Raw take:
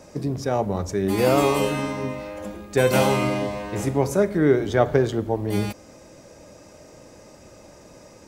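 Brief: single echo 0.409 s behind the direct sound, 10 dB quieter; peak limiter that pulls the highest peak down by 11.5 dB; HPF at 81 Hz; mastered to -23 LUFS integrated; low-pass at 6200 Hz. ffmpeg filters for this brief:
-af "highpass=81,lowpass=6.2k,alimiter=limit=-16.5dB:level=0:latency=1,aecho=1:1:409:0.316,volume=4dB"

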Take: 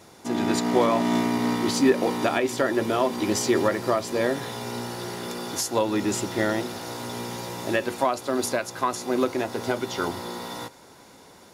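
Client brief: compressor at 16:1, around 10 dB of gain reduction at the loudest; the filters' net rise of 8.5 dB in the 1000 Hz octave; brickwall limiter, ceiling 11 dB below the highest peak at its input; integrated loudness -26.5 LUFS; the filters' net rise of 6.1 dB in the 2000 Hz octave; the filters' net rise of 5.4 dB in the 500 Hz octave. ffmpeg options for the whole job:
-af "equalizer=f=500:t=o:g=4.5,equalizer=f=1k:t=o:g=8,equalizer=f=2k:t=o:g=4.5,acompressor=threshold=-20dB:ratio=16,volume=2.5dB,alimiter=limit=-16.5dB:level=0:latency=1"

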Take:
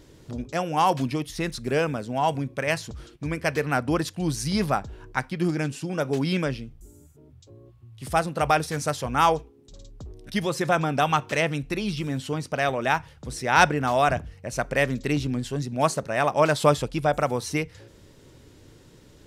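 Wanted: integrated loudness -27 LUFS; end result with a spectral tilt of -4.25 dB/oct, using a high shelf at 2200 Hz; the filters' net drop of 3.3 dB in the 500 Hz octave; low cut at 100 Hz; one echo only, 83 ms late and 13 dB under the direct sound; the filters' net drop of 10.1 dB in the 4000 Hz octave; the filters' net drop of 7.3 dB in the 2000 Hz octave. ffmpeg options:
-af "highpass=100,equalizer=f=500:t=o:g=-3.5,equalizer=f=2k:t=o:g=-6.5,highshelf=f=2.2k:g=-3,equalizer=f=4k:t=o:g=-8.5,aecho=1:1:83:0.224,volume=1dB"

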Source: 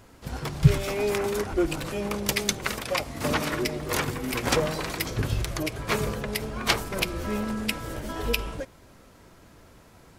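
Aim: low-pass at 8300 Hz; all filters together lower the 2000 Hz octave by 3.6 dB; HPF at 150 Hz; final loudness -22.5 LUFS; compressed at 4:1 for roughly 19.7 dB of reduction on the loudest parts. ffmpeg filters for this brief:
-af "highpass=150,lowpass=8.3k,equalizer=f=2k:t=o:g=-4.5,acompressor=threshold=-39dB:ratio=4,volume=18.5dB"

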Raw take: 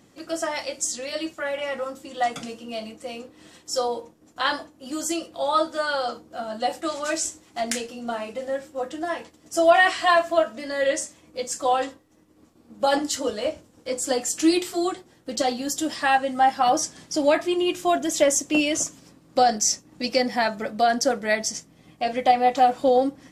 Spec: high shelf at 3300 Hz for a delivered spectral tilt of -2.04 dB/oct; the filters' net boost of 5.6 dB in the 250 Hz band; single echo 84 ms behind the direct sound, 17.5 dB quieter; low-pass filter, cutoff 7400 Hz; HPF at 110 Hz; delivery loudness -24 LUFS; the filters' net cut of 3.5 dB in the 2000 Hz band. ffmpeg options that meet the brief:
-af "highpass=110,lowpass=7.4k,equalizer=f=250:t=o:g=7.5,equalizer=f=2k:t=o:g=-6.5,highshelf=f=3.3k:g=7.5,aecho=1:1:84:0.133,volume=-2dB"

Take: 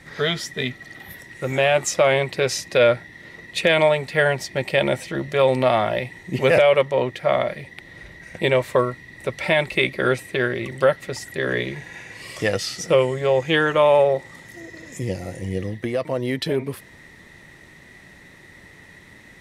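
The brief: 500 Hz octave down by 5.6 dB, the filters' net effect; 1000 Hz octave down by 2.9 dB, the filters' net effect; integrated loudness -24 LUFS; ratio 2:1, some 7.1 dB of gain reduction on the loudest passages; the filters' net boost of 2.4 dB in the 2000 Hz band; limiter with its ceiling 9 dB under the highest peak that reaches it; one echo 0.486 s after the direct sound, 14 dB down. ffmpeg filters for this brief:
-af "equalizer=f=500:t=o:g=-6,equalizer=f=1k:t=o:g=-3,equalizer=f=2k:t=o:g=4,acompressor=threshold=-27dB:ratio=2,alimiter=limit=-18.5dB:level=0:latency=1,aecho=1:1:486:0.2,volume=7dB"

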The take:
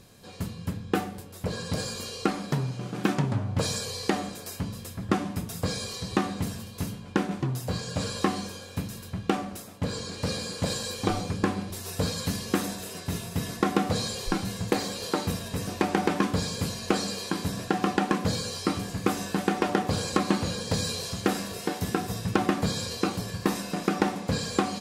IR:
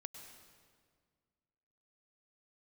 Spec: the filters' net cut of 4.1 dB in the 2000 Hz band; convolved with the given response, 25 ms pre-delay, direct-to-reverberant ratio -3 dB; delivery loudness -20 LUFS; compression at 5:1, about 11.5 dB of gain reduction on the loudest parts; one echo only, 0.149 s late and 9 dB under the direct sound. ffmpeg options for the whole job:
-filter_complex "[0:a]equalizer=f=2k:t=o:g=-5.5,acompressor=threshold=-34dB:ratio=5,aecho=1:1:149:0.355,asplit=2[a][b];[1:a]atrim=start_sample=2205,adelay=25[c];[b][c]afir=irnorm=-1:irlink=0,volume=7.5dB[d];[a][d]amix=inputs=2:normalize=0,volume=12.5dB"

